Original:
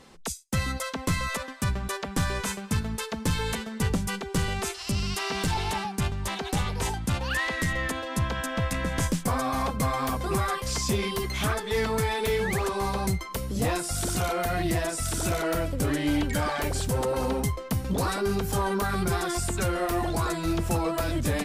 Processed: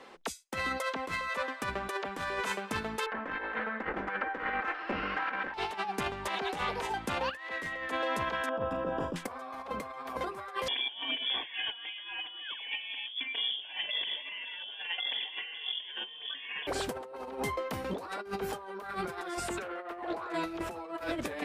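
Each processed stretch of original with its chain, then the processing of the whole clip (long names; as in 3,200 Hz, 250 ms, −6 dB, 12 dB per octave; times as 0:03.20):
0:03.06–0:05.54: lower of the sound and its delayed copy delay 3.8 ms + low-pass with resonance 1,700 Hz, resonance Q 2.5 + hum removal 147.7 Hz, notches 33
0:08.49–0:09.16: moving average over 21 samples + flutter between parallel walls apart 6.8 metres, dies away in 0.27 s
0:10.68–0:16.67: voice inversion scrambler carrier 3,400 Hz + Butterworth band-reject 1,300 Hz, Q 3.7
0:19.62–0:20.34: bass and treble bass −7 dB, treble −9 dB + highs frequency-modulated by the lows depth 0.17 ms
whole clip: three-way crossover with the lows and the highs turned down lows −22 dB, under 300 Hz, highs −14 dB, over 3,400 Hz; compressor whose output falls as the input rises −35 dBFS, ratio −0.5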